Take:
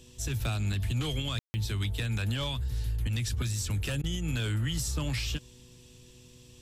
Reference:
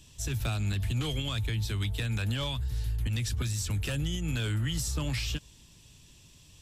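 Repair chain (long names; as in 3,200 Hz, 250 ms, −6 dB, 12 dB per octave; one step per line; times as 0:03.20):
hum removal 123.1 Hz, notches 4
ambience match 0:01.39–0:01.54
repair the gap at 0:01.51/0:04.02, 17 ms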